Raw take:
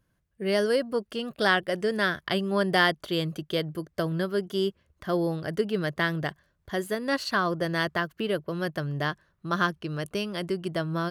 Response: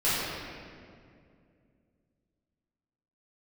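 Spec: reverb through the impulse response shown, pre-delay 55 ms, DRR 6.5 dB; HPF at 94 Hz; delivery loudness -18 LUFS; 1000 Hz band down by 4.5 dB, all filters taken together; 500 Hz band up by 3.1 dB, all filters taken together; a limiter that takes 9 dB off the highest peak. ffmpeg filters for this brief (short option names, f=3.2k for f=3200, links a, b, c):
-filter_complex "[0:a]highpass=94,equalizer=f=500:t=o:g=6,equalizer=f=1k:t=o:g=-9,alimiter=limit=-19dB:level=0:latency=1,asplit=2[a][b];[1:a]atrim=start_sample=2205,adelay=55[c];[b][c]afir=irnorm=-1:irlink=0,volume=-20dB[d];[a][d]amix=inputs=2:normalize=0,volume=11dB"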